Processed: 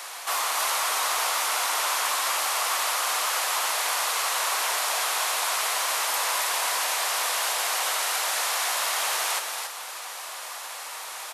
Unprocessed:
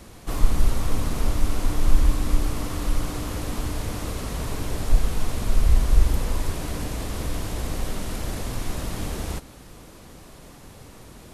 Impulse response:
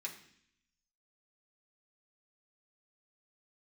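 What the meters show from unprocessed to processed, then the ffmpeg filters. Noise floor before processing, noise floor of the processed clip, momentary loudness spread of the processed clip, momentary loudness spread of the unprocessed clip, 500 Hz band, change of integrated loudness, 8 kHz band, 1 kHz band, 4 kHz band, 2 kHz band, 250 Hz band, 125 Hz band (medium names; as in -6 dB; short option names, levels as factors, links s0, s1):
-46 dBFS, -37 dBFS, 11 LU, 22 LU, -0.5 dB, +3.0 dB, +12.5 dB, +11.0 dB, +12.5 dB, +12.5 dB, under -20 dB, under -40 dB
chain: -filter_complex "[0:a]highpass=f=790:w=0.5412,highpass=f=790:w=1.3066,asplit=2[s0][s1];[s1]alimiter=level_in=3.76:limit=0.0631:level=0:latency=1:release=13,volume=0.266,volume=1.26[s2];[s0][s2]amix=inputs=2:normalize=0,aecho=1:1:277:0.531,volume=2.24"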